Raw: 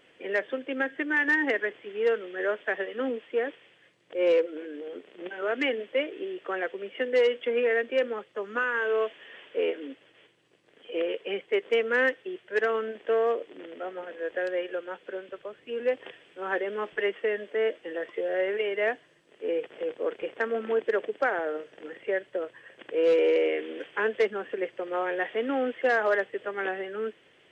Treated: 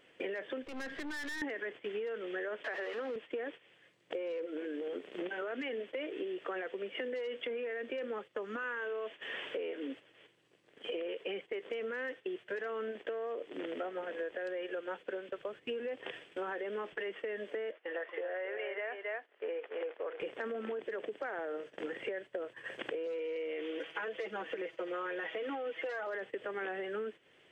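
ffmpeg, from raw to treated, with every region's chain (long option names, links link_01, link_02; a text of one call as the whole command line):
ffmpeg -i in.wav -filter_complex "[0:a]asettb=1/sr,asplit=3[link_01][link_02][link_03];[link_01]atrim=end=0.634[link_04];[link_02]atrim=start=0.63:end=1.42,asetpts=PTS-STARTPTS,afade=type=in:duration=0.004:curve=qsin,afade=type=out:start_time=0.786:duration=0.004:curve=qsin,acompressor=threshold=-34dB:ratio=16:attack=3.2:release=140:knee=1:detection=peak,aeval=exprs='(tanh(178*val(0)+0.65)-tanh(0.65))/178':channel_layout=same[link_05];[link_03]atrim=start=1.416[link_06];[link_04][link_05]acrossfade=duration=0.004:curve1=hsin:curve2=qsin[link_07];[link_07][link_06]acrossfade=duration=0.004:curve1=qsin:curve2=hsin,asettb=1/sr,asplit=3[link_08][link_09][link_10];[link_08]atrim=end=2.644[link_11];[link_09]atrim=start=2.64:end=3.16,asetpts=PTS-STARTPTS,afade=type=in:duration=0.004:curve=qsin,afade=type=out:start_time=0.516:duration=0.004:curve=qsin,aeval=exprs='val(0)+0.5*0.0188*sgn(val(0))':channel_layout=same,highpass=420,lowpass=2800[link_12];[link_10]atrim=start=3.156[link_13];[link_11][link_12]acrossfade=duration=0.004:curve1=hsin:curve2=qsin[link_14];[link_14][link_13]acrossfade=duration=0.004:curve1=qsin:curve2=hsin,asettb=1/sr,asplit=3[link_15][link_16][link_17];[link_15]atrim=end=17.714[link_18];[link_16]atrim=start=17.71:end=20.2,asetpts=PTS-STARTPTS,afade=type=in:duration=0.004:curve=qsin,afade=type=out:start_time=2.486:duration=0.004:curve=qsin,highpass=660,lowpass=2200,aecho=1:1:271:0.422,atrim=end_sample=109809[link_19];[link_17]atrim=start=20.196[link_20];[link_18][link_19]acrossfade=duration=0.004:curve1=hsin:curve2=qsin[link_21];[link_21][link_20]acrossfade=duration=0.004:curve1=qsin:curve2=hsin,asettb=1/sr,asplit=3[link_22][link_23][link_24];[link_22]atrim=end=23.064[link_25];[link_23]atrim=start=23.06:end=26.07,asetpts=PTS-STARTPTS,afade=type=in:duration=0.004:curve=qsin,afade=type=out:start_time=3.006:duration=0.004:curve=qsin,lowshelf=frequency=280:gain=-9,bandreject=frequency=1700:width=12,aecho=1:1:6.2:0.92,atrim=end_sample=132741[link_26];[link_24]atrim=start=26.066[link_27];[link_25][link_26]acrossfade=duration=0.004:curve1=hsin:curve2=qsin[link_28];[link_28][link_27]acrossfade=duration=0.004:curve1=qsin:curve2=hsin,alimiter=level_in=2.5dB:limit=-24dB:level=0:latency=1:release=21,volume=-2.5dB,acompressor=threshold=-44dB:ratio=10,agate=range=-12dB:threshold=-55dB:ratio=16:detection=peak,volume=8dB" out.wav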